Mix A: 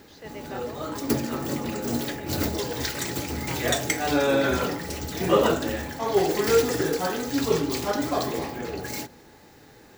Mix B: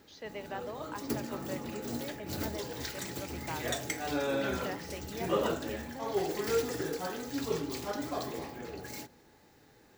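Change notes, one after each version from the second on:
background −10.0 dB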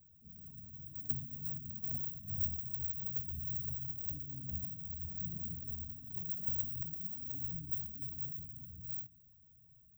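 background: add high shelf with overshoot 2,100 Hz +13 dB, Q 3
master: add inverse Chebyshev band-stop filter 660–9,700 Hz, stop band 70 dB

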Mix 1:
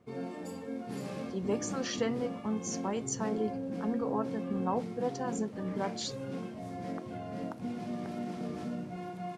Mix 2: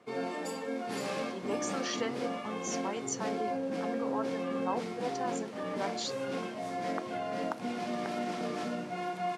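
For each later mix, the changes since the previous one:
background +9.0 dB
master: add meter weighting curve A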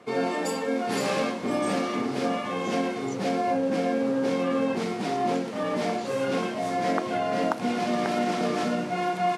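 speech −11.0 dB
background +9.0 dB

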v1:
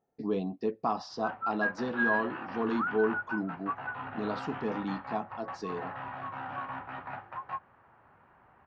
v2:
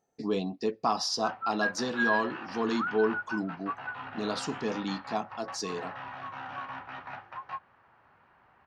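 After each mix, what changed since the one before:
background −4.5 dB
master: remove head-to-tape spacing loss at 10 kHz 31 dB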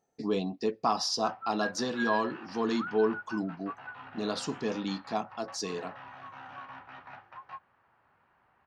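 background −6.0 dB

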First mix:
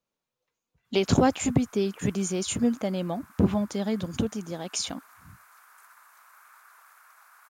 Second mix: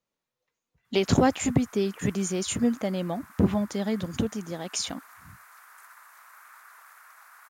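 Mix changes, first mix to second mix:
background +3.0 dB
master: add parametric band 1,900 Hz +5 dB 0.23 octaves

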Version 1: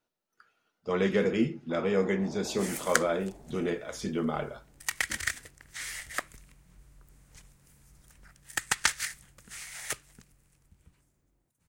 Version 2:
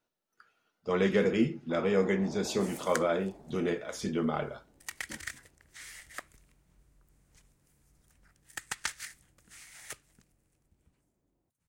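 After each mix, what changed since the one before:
second sound −9.0 dB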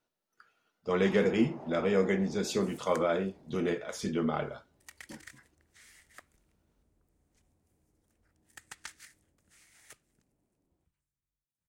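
first sound: entry −0.65 s
second sound −10.5 dB

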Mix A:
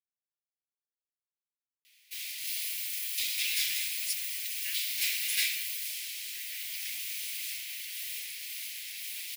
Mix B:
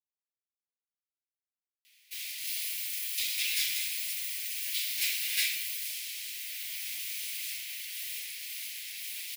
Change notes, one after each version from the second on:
speech −9.5 dB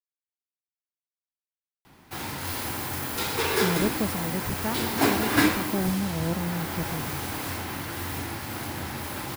master: remove Butterworth high-pass 2,200 Hz 48 dB per octave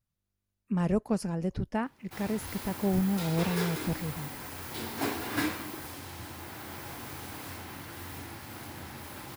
speech: entry −2.90 s
background −9.5 dB

